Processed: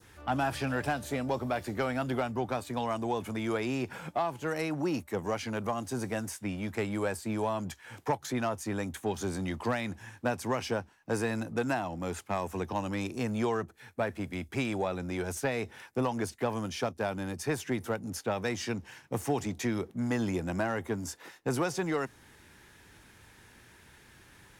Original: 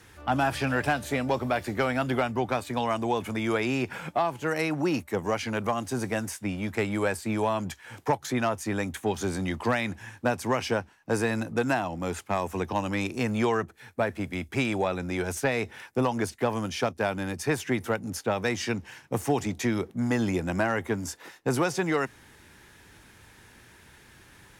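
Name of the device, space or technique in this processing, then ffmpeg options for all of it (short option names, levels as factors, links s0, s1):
parallel distortion: -filter_complex "[0:a]asplit=2[s0][s1];[s1]asoftclip=type=hard:threshold=0.0237,volume=0.251[s2];[s0][s2]amix=inputs=2:normalize=0,adynamicequalizer=threshold=0.00794:dfrequency=2200:dqfactor=1.1:tfrequency=2200:tqfactor=1.1:attack=5:release=100:ratio=0.375:range=2.5:mode=cutabove:tftype=bell,volume=0.562"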